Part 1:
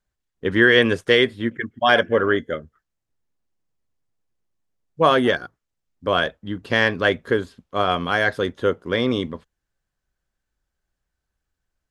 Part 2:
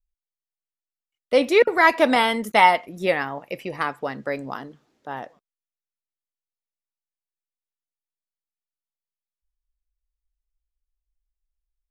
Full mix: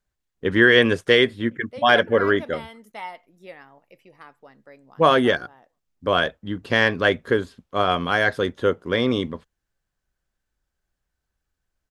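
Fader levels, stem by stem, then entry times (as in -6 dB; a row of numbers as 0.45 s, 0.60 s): 0.0 dB, -20.0 dB; 0.00 s, 0.40 s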